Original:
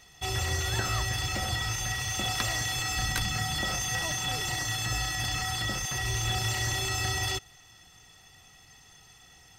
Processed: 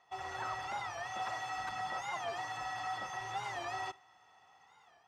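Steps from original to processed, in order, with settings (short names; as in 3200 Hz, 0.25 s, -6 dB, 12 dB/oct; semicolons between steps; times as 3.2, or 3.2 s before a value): AGC gain up to 4.5 dB; time stretch by phase-locked vocoder 0.53×; soft clip -22.5 dBFS, distortion -16 dB; band-pass 920 Hz, Q 2.3; reverb, pre-delay 3 ms, DRR 20 dB; record warp 45 rpm, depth 160 cents; gain +1 dB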